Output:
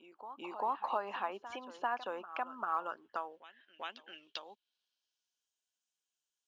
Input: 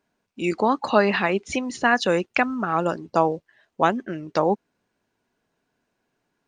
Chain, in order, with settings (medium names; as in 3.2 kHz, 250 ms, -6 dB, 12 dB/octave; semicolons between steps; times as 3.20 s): graphic EQ with 31 bands 160 Hz -11 dB, 2 kHz -8 dB, 3.15 kHz +11 dB; compression 2.5:1, threshold -28 dBFS, peak gain reduction 11 dB; band-pass sweep 970 Hz -> 7 kHz, 2.51–5.54 s; short-mantissa float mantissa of 6-bit; on a send: reverse echo 394 ms -13.5 dB; on the sum: trim -1.5 dB